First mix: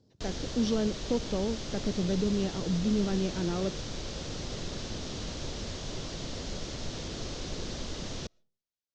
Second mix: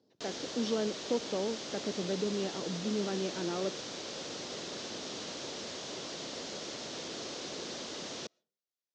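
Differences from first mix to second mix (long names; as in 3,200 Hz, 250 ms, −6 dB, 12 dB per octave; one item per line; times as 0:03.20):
speech: add high-frequency loss of the air 80 metres
master: add high-pass filter 300 Hz 12 dB per octave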